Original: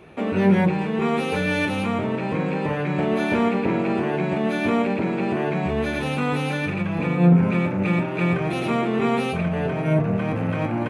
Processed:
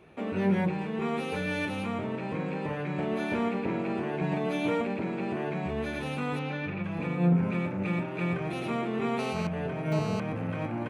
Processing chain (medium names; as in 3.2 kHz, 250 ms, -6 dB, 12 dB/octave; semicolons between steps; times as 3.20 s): 4.21–4.81 s: comb 6.5 ms, depth 92%; 6.39–6.84 s: low-pass 3.6 kHz 12 dB/octave; 9.19–10.20 s: mobile phone buzz -27 dBFS; trim -8.5 dB